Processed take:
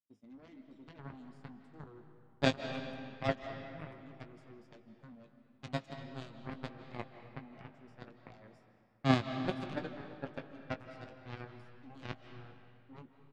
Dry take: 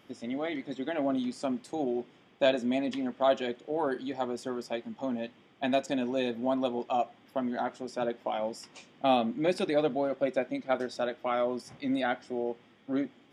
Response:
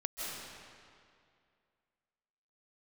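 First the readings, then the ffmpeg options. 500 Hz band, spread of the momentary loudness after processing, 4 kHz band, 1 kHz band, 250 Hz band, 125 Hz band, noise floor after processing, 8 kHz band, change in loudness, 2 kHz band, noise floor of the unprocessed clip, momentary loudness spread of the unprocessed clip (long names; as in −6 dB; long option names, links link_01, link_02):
−13.5 dB, 23 LU, −6.0 dB, −11.5 dB, −9.5 dB, +5.5 dB, −65 dBFS, −9.5 dB, −8.0 dB, −5.5 dB, −60 dBFS, 8 LU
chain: -filter_complex "[0:a]aeval=exprs='0.266*(cos(1*acos(clip(val(0)/0.266,-1,1)))-cos(1*PI/2))+0.0944*(cos(3*acos(clip(val(0)/0.266,-1,1)))-cos(3*PI/2))':channel_layout=same,equalizer=frequency=120:width=0.44:gain=13.5,agate=range=-33dB:threshold=-56dB:ratio=3:detection=peak,asplit=2[link_01][link_02];[link_02]adelay=19,volume=-10dB[link_03];[link_01][link_03]amix=inputs=2:normalize=0,asplit=2[link_04][link_05];[1:a]atrim=start_sample=2205,lowpass=4900[link_06];[link_05][link_06]afir=irnorm=-1:irlink=0,volume=-7dB[link_07];[link_04][link_07]amix=inputs=2:normalize=0,volume=-3.5dB"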